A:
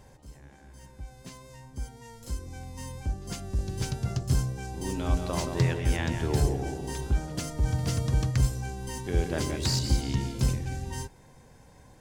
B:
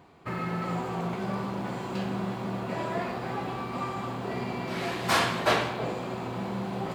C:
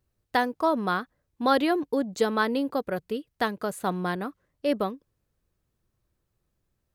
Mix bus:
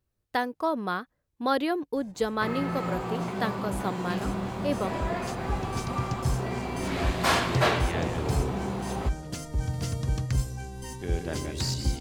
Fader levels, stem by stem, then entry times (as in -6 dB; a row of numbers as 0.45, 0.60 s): -2.5, 0.0, -3.5 dB; 1.95, 2.15, 0.00 s